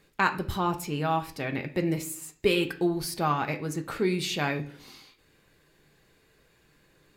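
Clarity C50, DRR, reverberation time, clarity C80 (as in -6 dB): 13.5 dB, 4.5 dB, 0.50 s, 17.5 dB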